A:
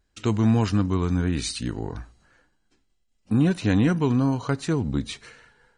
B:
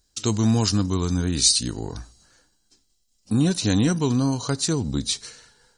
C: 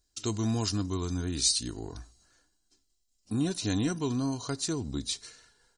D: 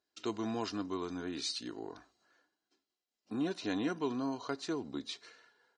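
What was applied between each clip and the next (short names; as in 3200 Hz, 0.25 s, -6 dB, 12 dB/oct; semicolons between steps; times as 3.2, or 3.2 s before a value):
resonant high shelf 3400 Hz +12.5 dB, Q 1.5
comb 2.9 ms, depth 33%; gain -8.5 dB
BPF 330–2700 Hz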